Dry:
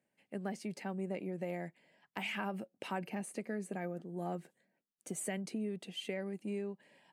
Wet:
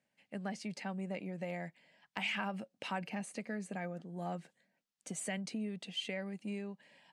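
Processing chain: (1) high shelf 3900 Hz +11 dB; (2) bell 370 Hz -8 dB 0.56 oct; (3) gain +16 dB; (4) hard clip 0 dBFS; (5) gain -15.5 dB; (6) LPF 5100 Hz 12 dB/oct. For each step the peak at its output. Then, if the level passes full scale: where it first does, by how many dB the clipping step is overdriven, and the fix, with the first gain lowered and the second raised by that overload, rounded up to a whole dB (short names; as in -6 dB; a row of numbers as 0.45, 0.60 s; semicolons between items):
-19.5, -19.5, -3.5, -3.5, -19.0, -20.5 dBFS; no overload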